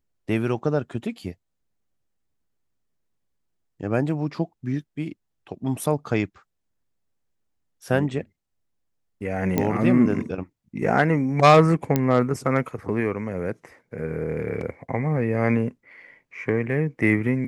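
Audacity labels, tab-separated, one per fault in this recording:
9.580000	9.580000	pop -9 dBFS
11.960000	11.960000	pop -7 dBFS

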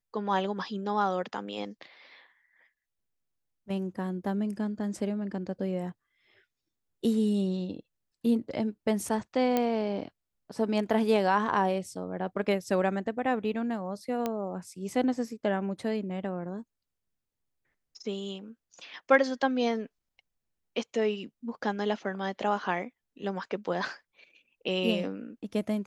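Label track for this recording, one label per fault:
9.570000	9.570000	pop -13 dBFS
14.260000	14.260000	pop -16 dBFS

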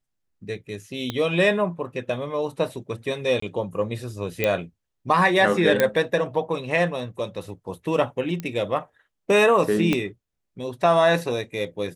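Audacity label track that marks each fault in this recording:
1.100000	1.100000	pop -13 dBFS
3.400000	3.420000	dropout 24 ms
4.440000	4.440000	pop -8 dBFS
5.800000	5.800000	pop -5 dBFS
8.400000	8.400000	pop -17 dBFS
9.930000	9.930000	pop -9 dBFS

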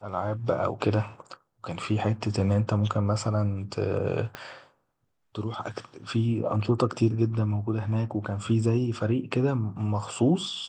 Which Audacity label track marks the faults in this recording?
4.350000	4.350000	pop -19 dBFS

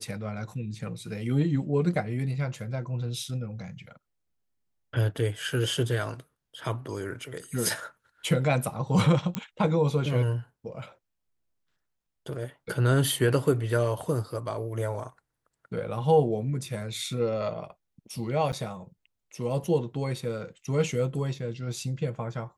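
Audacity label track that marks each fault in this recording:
9.350000	9.350000	pop -13 dBFS
18.520000	18.530000	dropout 8.5 ms

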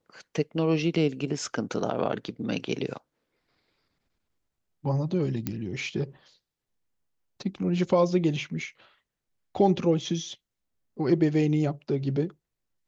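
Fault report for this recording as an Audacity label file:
5.470000	5.470000	pop -15 dBFS

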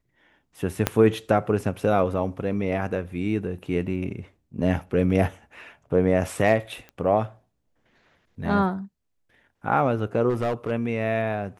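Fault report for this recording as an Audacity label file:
0.870000	0.870000	pop -5 dBFS
6.890000	6.890000	pop -27 dBFS
10.290000	10.710000	clipped -20.5 dBFS

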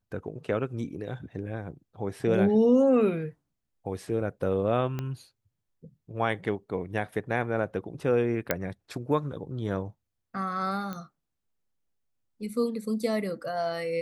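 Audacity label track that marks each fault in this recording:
4.990000	4.990000	pop -19 dBFS
8.510000	8.510000	pop -9 dBFS
10.930000	10.930000	pop -22 dBFS

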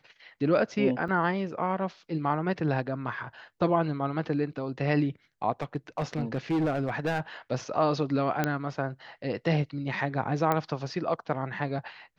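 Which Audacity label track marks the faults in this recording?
1.080000	1.080000	dropout 4.3 ms
5.620000	7.200000	clipped -23 dBFS
8.440000	8.440000	pop -12 dBFS
10.520000	10.520000	pop -13 dBFS

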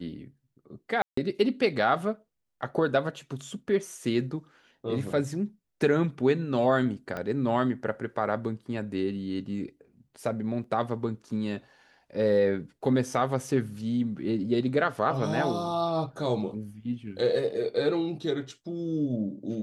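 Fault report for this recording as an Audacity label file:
1.020000	1.170000	dropout 154 ms
7.170000	7.170000	pop -21 dBFS
10.640000	10.640000	dropout 2.9 ms

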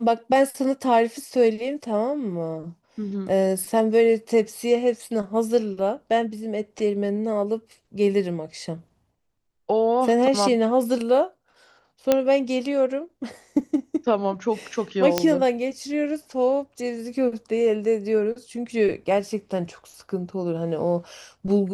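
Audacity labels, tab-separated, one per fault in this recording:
12.120000	12.120000	pop -5 dBFS
15.180000	15.180000	pop -4 dBFS

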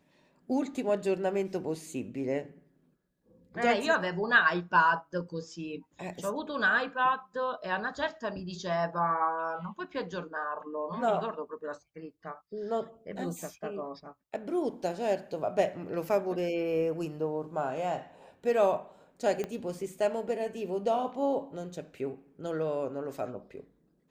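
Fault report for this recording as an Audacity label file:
19.440000	19.440000	pop -21 dBFS

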